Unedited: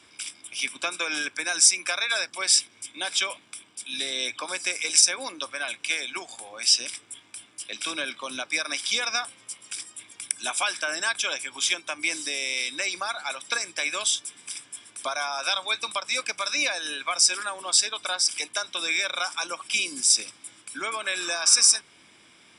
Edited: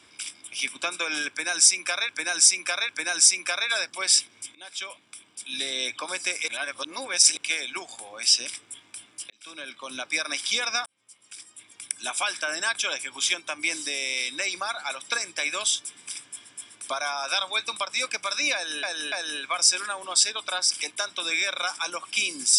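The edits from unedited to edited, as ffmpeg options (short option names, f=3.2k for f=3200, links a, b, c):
-filter_complex "[0:a]asplit=11[a][b][c][d][e][f][g][h][i][j][k];[a]atrim=end=2.092[l];[b]atrim=start=1.288:end=2.092[m];[c]atrim=start=1.288:end=2.95,asetpts=PTS-STARTPTS,afade=t=out:st=1.658:d=0.004:c=hsin:silence=0.133352[n];[d]atrim=start=2.95:end=4.882,asetpts=PTS-STARTPTS,afade=t=in:d=0.99:silence=0.133352[o];[e]atrim=start=4.878:end=5.772,asetpts=PTS-STARTPTS,areverse[p];[f]atrim=start=5.768:end=7.7,asetpts=PTS-STARTPTS,afade=t=out:st=1.928:d=0.004:c=hsin[q];[g]atrim=start=7.7:end=9.26,asetpts=PTS-STARTPTS,afade=t=in:d=0.82,afade=t=out:st=1.556:d=0.004:c=hsin[r];[h]atrim=start=9.26:end=14.892,asetpts=PTS-STARTPTS,afade=t=in:d=1.97:c=qsin[s];[i]atrim=start=14.638:end=16.982[t];[j]atrim=start=16.688:end=16.982[u];[k]atrim=start=16.688[v];[l][m]acrossfade=d=0.004:c1=hsin:c2=hsin[w];[n][o]concat=n=2:v=0:a=1[x];[w][x]acrossfade=d=0.004:c1=hsin:c2=hsin[y];[y][p]acrossfade=d=0.004:c1=hsin:c2=hsin[z];[q][r][s]concat=n=3:v=0:a=1[aa];[z][aa]acrossfade=d=0.004:c1=hsin:c2=hsin[ab];[ab][t]acrossfade=d=0.004:c1=hsin:c2=hsin[ac];[ac][u]acrossfade=d=0.004:c1=hsin:c2=hsin[ad];[ad][v]acrossfade=d=0.004:c1=hsin:c2=hsin"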